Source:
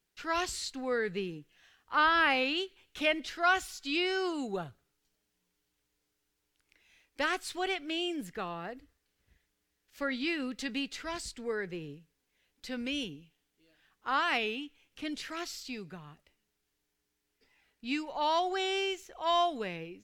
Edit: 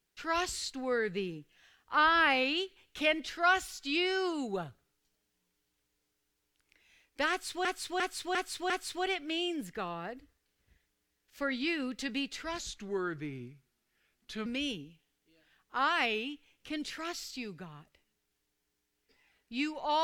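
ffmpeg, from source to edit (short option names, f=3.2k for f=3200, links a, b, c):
-filter_complex "[0:a]asplit=7[a][b][c][d][e][f][g];[a]atrim=end=7.652[h];[b]atrim=start=7.298:end=7.652[i];[c]atrim=start=7.298:end=7.652[j];[d]atrim=start=7.298:end=7.652[k];[e]atrim=start=7.298:end=11.194[l];[f]atrim=start=11.19:end=12.78,asetpts=PTS-STARTPTS,asetrate=37485,aresample=44100[m];[g]atrim=start=12.776[n];[h][i]acrossfade=d=0.004:c1=hsin:c2=hsin[o];[o][j]acrossfade=d=0.004:c1=hsin:c2=hsin[p];[p][k]acrossfade=d=0.004:c1=hsin:c2=hsin[q];[q][l]acrossfade=d=0.004:c1=hsin:c2=hsin[r];[r][m]acrossfade=d=0.004:c1=hsin:c2=hsin[s];[s][n]acrossfade=d=0.004:c1=hsin:c2=hsin"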